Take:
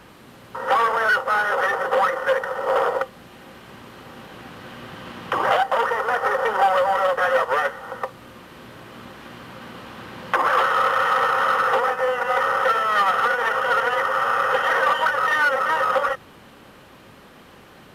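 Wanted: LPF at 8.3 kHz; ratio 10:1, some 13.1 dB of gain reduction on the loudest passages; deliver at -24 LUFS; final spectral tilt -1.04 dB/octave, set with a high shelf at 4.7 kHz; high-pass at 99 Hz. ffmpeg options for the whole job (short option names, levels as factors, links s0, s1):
-af "highpass=99,lowpass=8300,highshelf=f=4700:g=5,acompressor=threshold=0.0398:ratio=10,volume=2.51"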